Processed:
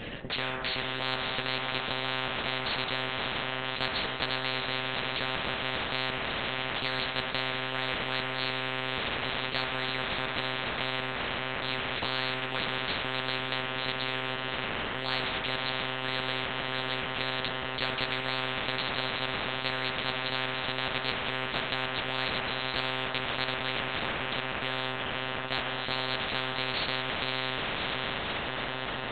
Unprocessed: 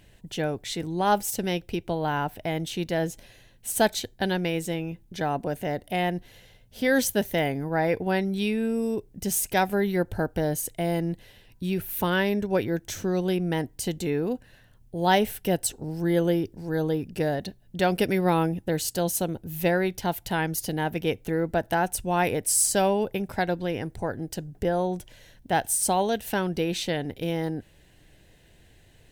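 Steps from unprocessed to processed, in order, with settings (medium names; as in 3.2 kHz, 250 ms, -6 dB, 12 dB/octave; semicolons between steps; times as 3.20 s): echo that smears into a reverb 584 ms, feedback 67%, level -13 dB; monotone LPC vocoder at 8 kHz 130 Hz; on a send at -4 dB: reverberation RT60 0.65 s, pre-delay 3 ms; on the sum: spectrum-flattening compressor 10:1; trim -7.5 dB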